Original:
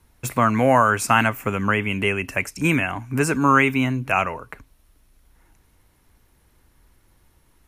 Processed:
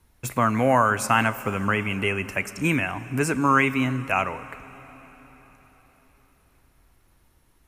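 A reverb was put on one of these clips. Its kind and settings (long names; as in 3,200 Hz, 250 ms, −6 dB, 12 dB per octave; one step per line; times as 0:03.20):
dense smooth reverb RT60 4.6 s, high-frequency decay 0.95×, DRR 14.5 dB
level −3 dB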